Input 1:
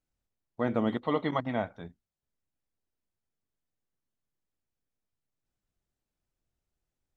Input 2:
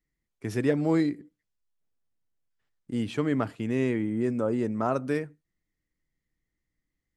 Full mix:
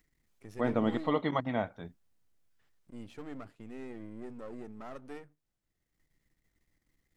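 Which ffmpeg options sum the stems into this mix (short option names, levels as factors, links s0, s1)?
-filter_complex "[0:a]volume=0.891[s0];[1:a]aeval=exprs='if(lt(val(0),0),0.251*val(0),val(0))':c=same,acompressor=mode=upward:threshold=0.00794:ratio=2.5,volume=0.224[s1];[s0][s1]amix=inputs=2:normalize=0"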